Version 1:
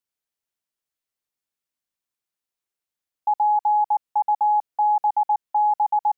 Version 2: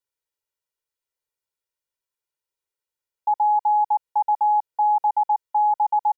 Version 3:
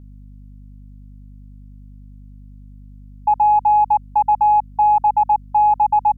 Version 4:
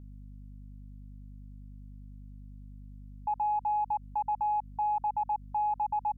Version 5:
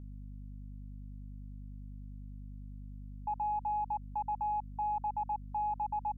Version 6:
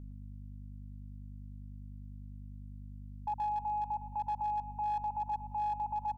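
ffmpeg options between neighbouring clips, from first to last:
ffmpeg -i in.wav -af "equalizer=frequency=640:width_type=o:width=2.1:gain=2.5,aecho=1:1:2.1:0.99,volume=-5dB" out.wav
ffmpeg -i in.wav -af "acontrast=37,aeval=exprs='val(0)+0.0112*(sin(2*PI*50*n/s)+sin(2*PI*2*50*n/s)/2+sin(2*PI*3*50*n/s)/3+sin(2*PI*4*50*n/s)/4+sin(2*PI*5*50*n/s)/5)':channel_layout=same" out.wav
ffmpeg -i in.wav -af "alimiter=limit=-18.5dB:level=0:latency=1:release=70,volume=-6.5dB" out.wav
ffmpeg -i in.wav -af "aeval=exprs='val(0)+0.00501*(sin(2*PI*50*n/s)+sin(2*PI*2*50*n/s)/2+sin(2*PI*3*50*n/s)/3+sin(2*PI*4*50*n/s)/4+sin(2*PI*5*50*n/s)/5)':channel_layout=same,volume=-4.5dB" out.wav
ffmpeg -i in.wav -af "aecho=1:1:111|222|333|444|555|666:0.251|0.143|0.0816|0.0465|0.0265|0.0151,asoftclip=type=hard:threshold=-29.5dB" out.wav

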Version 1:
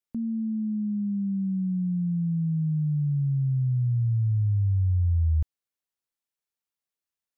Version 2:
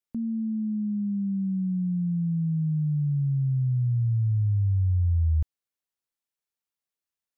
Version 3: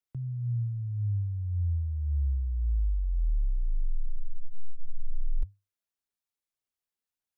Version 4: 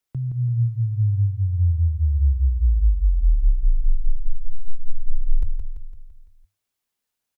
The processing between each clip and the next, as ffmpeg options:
ffmpeg -i in.wav -af anull out.wav
ffmpeg -i in.wav -af "afreqshift=-100,aphaser=in_gain=1:out_gain=1:delay=4.9:decay=0.28:speed=1.8:type=sinusoidal,volume=-3dB" out.wav
ffmpeg -i in.wav -af "aecho=1:1:169|338|507|676|845|1014:0.473|0.241|0.123|0.0628|0.032|0.0163,volume=8.5dB" out.wav

